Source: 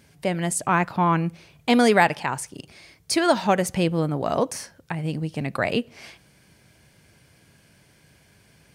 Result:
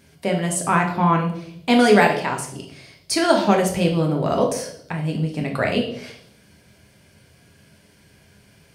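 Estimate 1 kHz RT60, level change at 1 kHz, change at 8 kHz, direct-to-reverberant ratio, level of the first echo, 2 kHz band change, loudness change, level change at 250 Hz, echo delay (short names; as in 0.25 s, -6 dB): 0.60 s, +2.0 dB, +2.0 dB, 1.0 dB, none, +2.0 dB, +3.0 dB, +3.5 dB, none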